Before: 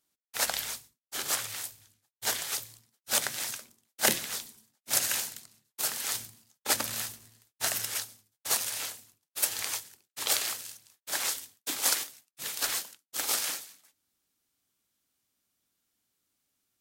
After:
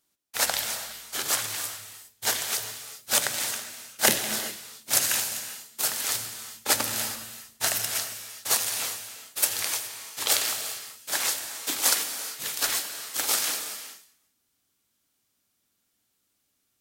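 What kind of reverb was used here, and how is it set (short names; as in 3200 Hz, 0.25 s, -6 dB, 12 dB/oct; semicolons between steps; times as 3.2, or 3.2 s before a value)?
non-linear reverb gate 0.44 s flat, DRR 7.5 dB; gain +4 dB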